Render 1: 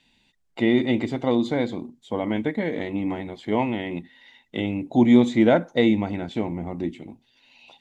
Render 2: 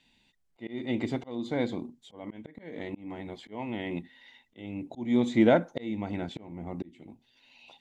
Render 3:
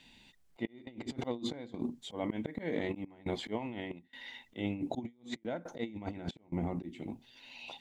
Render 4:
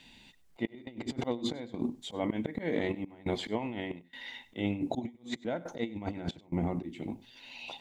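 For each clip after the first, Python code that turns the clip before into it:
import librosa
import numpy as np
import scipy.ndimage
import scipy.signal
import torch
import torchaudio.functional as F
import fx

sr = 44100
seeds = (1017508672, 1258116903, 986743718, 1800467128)

y1 = fx.auto_swell(x, sr, attack_ms=426.0)
y1 = y1 * 10.0 ** (-3.5 / 20.0)
y2 = fx.step_gate(y1, sr, bpm=69, pattern='xxx.xxx.xxx', floor_db=-24.0, edge_ms=4.5)
y2 = fx.over_compress(y2, sr, threshold_db=-39.0, ratio=-0.5)
y2 = y2 * 10.0 ** (1.0 / 20.0)
y3 = y2 + 10.0 ** (-20.5 / 20.0) * np.pad(y2, (int(98 * sr / 1000.0), 0))[:len(y2)]
y3 = y3 * 10.0 ** (3.5 / 20.0)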